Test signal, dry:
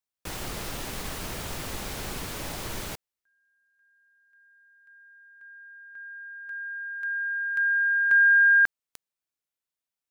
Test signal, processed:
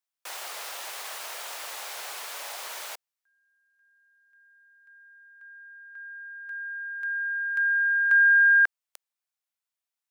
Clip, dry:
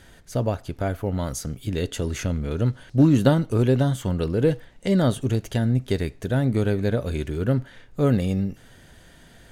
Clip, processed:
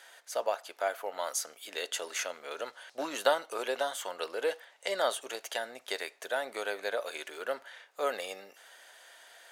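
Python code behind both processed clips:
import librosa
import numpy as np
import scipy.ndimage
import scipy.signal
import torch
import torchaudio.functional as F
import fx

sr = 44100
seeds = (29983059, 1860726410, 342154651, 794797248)

y = scipy.signal.sosfilt(scipy.signal.butter(4, 610.0, 'highpass', fs=sr, output='sos'), x)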